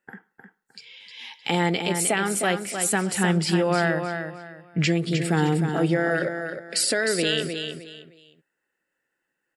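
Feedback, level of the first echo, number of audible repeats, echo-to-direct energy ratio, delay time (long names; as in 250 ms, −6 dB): 27%, −7.0 dB, 3, −6.5 dB, 308 ms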